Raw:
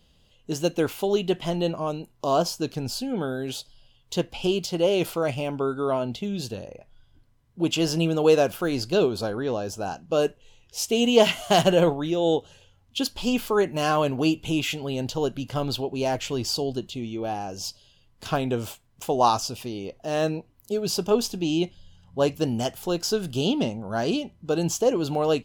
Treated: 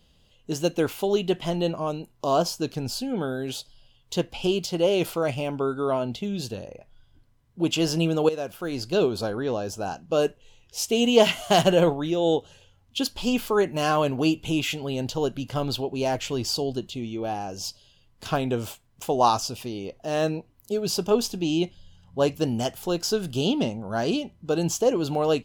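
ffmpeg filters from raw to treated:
ffmpeg -i in.wav -filter_complex "[0:a]asplit=2[link_01][link_02];[link_01]atrim=end=8.29,asetpts=PTS-STARTPTS,afade=type=out:start_time=8.286:duration=0.004:curve=hsin:silence=0.177828[link_03];[link_02]atrim=start=8.29,asetpts=PTS-STARTPTS,afade=type=in:duration=0.8:silence=0.177828[link_04];[link_03][link_04]concat=n=2:v=0:a=1" out.wav

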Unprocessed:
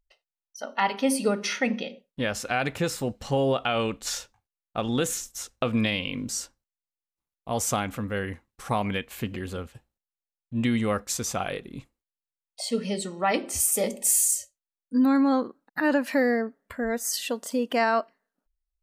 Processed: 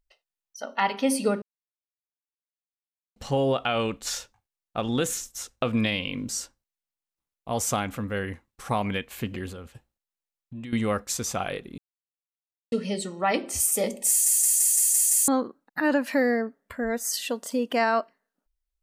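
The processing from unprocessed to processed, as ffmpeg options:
ffmpeg -i in.wav -filter_complex "[0:a]asettb=1/sr,asplit=3[link_01][link_02][link_03];[link_01]atrim=end=9.504[link_04];[link_02]atrim=start=9.5:end=10.73,asetpts=PTS-STARTPTS,afade=type=in:duration=0.004:curve=qsin,afade=type=out:start_time=1.226:duration=0.004:curve=qsin,acompressor=threshold=-36dB:ratio=5:attack=3.2:release=140:knee=1:detection=peak[link_05];[link_03]atrim=start=10.726[link_06];[link_04][link_05]acrossfade=duration=0.004:curve1=hsin:curve2=qsin[link_07];[link_07][link_06]acrossfade=duration=0.004:curve1=qsin:curve2=hsin,asplit=12[link_08][link_09][link_10][link_11][link_12][link_13][link_14][link_15][link_16][link_17][link_18][link_19];[link_08]atrim=end=1.42,asetpts=PTS-STARTPTS,afade=type=out:start_time=1.416:duration=0.004:curve=hsin[link_20];[link_09]atrim=start=1.42:end=3.16,asetpts=PTS-STARTPTS,volume=0[link_21];[link_10]atrim=start=3.16:end=11.78,asetpts=PTS-STARTPTS,afade=type=in:duration=0.004:curve=hsin,afade=type=out:start_time=8.616:duration=0.004:curve=hsin[link_22];[link_11]atrim=start=11.78:end=12.72,asetpts=PTS-STARTPTS,volume=0[link_23];[link_12]atrim=start=12.72:end=14.262,asetpts=PTS-STARTPTS,afade=type=in:duration=0.004:curve=hsin[link_24];[link_13]atrim=start=14.088:end=14.262[link_25];[link_14]atrim=start=14.088:end=14.262[link_26];[link_15]atrim=start=14.088:end=14.262[link_27];[link_16]atrim=start=14.088:end=14.262[link_28];[link_17]atrim=start=14.088:end=14.262[link_29];[link_18]atrim=start=14.088:end=14.262[link_30];[link_19]atrim=start=15.278[link_31];[link_20][link_21][link_22][link_23][link_24]concat=n=5:v=0:a=1[link_32];[link_32][link_25]acrossfade=duration=0.004:curve1=hsin:curve2=hsin[link_33];[link_33][link_26]acrossfade=duration=0.004:curve1=hsin:curve2=hsin[link_34];[link_34][link_27]acrossfade=duration=0.004:curve1=hsin:curve2=hsin[link_35];[link_35][link_28]acrossfade=duration=0.004:curve1=hsin:curve2=hsin[link_36];[link_36][link_29]acrossfade=duration=0.004:curve1=hsin:curve2=hsin[link_37];[link_37][link_30]acrossfade=duration=0.004:curve1=hsin:curve2=hsin[link_38];[link_38][link_31]acrossfade=duration=0.004:curve1=hsin:curve2=hsin" out.wav

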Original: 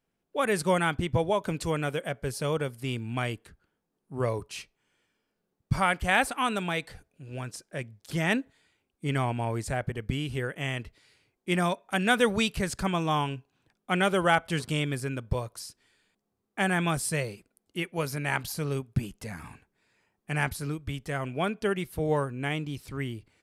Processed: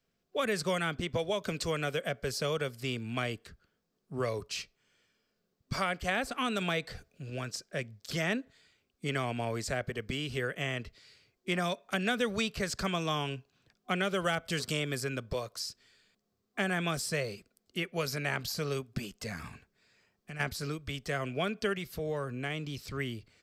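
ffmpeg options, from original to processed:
ffmpeg -i in.wav -filter_complex "[0:a]asettb=1/sr,asplit=3[link_01][link_02][link_03];[link_01]atrim=end=14.244[link_04];[link_02]atrim=start=14.24:end=15.04,asetpts=PTS-STARTPTS,afade=type=in:duration=0.004:curve=qsin,afade=type=out:start_time=0.796:duration=0.004:curve=qsin,highshelf=frequency=6200:gain=8[link_05];[link_03]atrim=start=15.036[link_06];[link_04][link_05]acrossfade=duration=0.004:curve1=hsin:curve2=qsin[link_07];[link_07][link_06]acrossfade=duration=0.004:curve1=qsin:curve2=hsin,asplit=3[link_08][link_09][link_10];[link_08]afade=type=out:start_time=19.48:duration=0.02[link_11];[link_09]acompressor=threshold=-42dB:ratio=5:attack=3.2:release=140:knee=1:detection=peak,afade=type=in:start_time=19.48:duration=0.02,afade=type=out:start_time=20.39:duration=0.02[link_12];[link_10]afade=type=in:start_time=20.39:duration=0.02[link_13];[link_11][link_12][link_13]amix=inputs=3:normalize=0,asettb=1/sr,asplit=3[link_14][link_15][link_16];[link_14]atrim=end=21.774[link_17];[link_15]atrim=start=21.77:end=22.9,asetpts=PTS-STARTPTS,afade=type=in:duration=0.004:curve=qsin,afade=type=out:start_time=1.126:duration=0.004:curve=qsin,acompressor=threshold=-32dB:ratio=2.5:attack=3.2:release=140:knee=1:detection=peak[link_18];[link_16]atrim=start=22.896[link_19];[link_17][link_18]acrossfade=duration=0.004:curve1=hsin:curve2=qsin[link_20];[link_20][link_19]acrossfade=duration=0.004:curve1=qsin:curve2=hsin,asplit=3[link_21][link_22][link_23];[link_21]atrim=end=6.612[link_24];[link_22]atrim=start=6.608:end=7.302,asetpts=PTS-STARTPTS,volume=3dB[link_25];[link_23]atrim=start=7.298[link_26];[link_24][link_25]acrossfade=duration=0.004:curve1=hsin:curve2=hsin[link_27];[link_27][link_26]acrossfade=duration=0.004:curve1=hsin:curve2=hsin,superequalizer=6b=0.631:9b=0.501:16b=0.447,acrossover=split=230|550|1700[link_28][link_29][link_30][link_31];[link_28]acompressor=threshold=-42dB:ratio=4[link_32];[link_29]acompressor=threshold=-36dB:ratio=4[link_33];[link_30]acompressor=threshold=-37dB:ratio=4[link_34];[link_31]acompressor=threshold=-38dB:ratio=4[link_35];[link_32][link_33][link_34][link_35]amix=inputs=4:normalize=0,equalizer=frequency=4800:width=1.7:gain=6.5,volume=1dB" out.wav

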